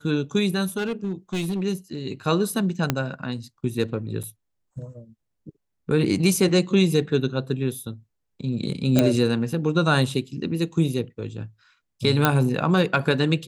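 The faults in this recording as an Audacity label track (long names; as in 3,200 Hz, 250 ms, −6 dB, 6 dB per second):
0.770000	1.610000	clipping −22 dBFS
2.900000	2.900000	click −6 dBFS
4.230000	4.240000	drop-out 6.3 ms
8.990000	8.990000	click −5 dBFS
12.250000	12.250000	click −3 dBFS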